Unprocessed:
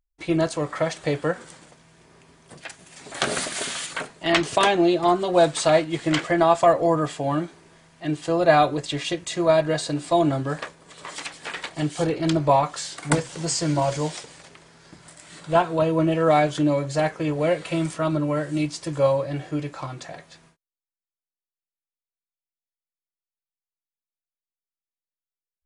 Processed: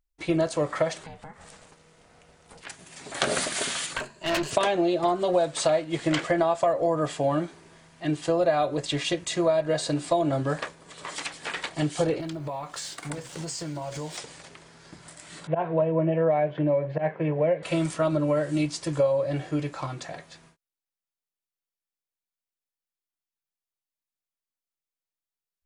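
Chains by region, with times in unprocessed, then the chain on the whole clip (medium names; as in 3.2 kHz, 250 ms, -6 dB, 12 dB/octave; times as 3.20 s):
1.03–2.67 s: compression 5:1, threshold -39 dBFS + ring modulator 320 Hz
3.97–4.51 s: rippled EQ curve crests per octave 1.4, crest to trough 10 dB + valve stage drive 22 dB, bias 0.75
12.20–14.18 s: companding laws mixed up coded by A + compression 10:1, threshold -30 dBFS
15.47–17.63 s: slow attack 111 ms + cabinet simulation 140–2300 Hz, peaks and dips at 160 Hz +5 dB, 260 Hz -9 dB, 1.3 kHz -10 dB
whole clip: dynamic bell 570 Hz, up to +7 dB, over -34 dBFS, Q 3.1; compression 6:1, threshold -20 dBFS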